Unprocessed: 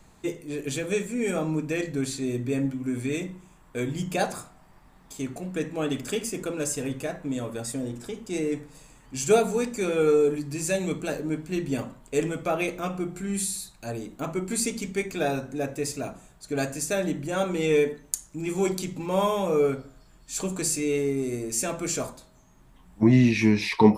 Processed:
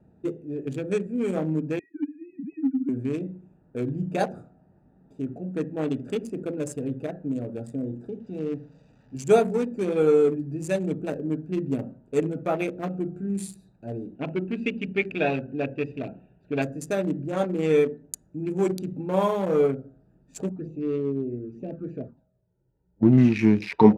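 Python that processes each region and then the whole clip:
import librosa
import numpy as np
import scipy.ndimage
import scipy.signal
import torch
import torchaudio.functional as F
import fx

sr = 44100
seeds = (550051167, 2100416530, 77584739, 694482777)

y = fx.chain(x, sr, fx.sine_speech(),
    fx.ellip_bandstop(low_hz=300.0, high_hz=720.0, order=3, stop_db=40), at=(1.79, 2.89))
y = fx.chain(y, sr, fx.crossing_spikes(level_db=-29.5),
    fx.lowpass(hz=5800.0, slope=24),
    fx.peak_eq(hz=350.0, db=-10.0, octaves=0.31), at=(8.2, 9.15))
y = fx.chain(y, sr, fx.lowpass_res(hz=2800.0, q=5.5),
    fx.notch(hz=1200.0, q=6.6), at=(14.15, 16.62))
y = fx.chain(y, sr, fx.law_mismatch(coded='A'),
    fx.env_flanger(rest_ms=2.2, full_db=-24.0),
    fx.air_absorb(metres=240.0), at=(20.49, 23.18))
y = fx.wiener(y, sr, points=41)
y = scipy.signal.sosfilt(scipy.signal.butter(2, 97.0, 'highpass', fs=sr, output='sos'), y)
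y = fx.high_shelf(y, sr, hz=2600.0, db=-9.0)
y = F.gain(torch.from_numpy(y), 2.5).numpy()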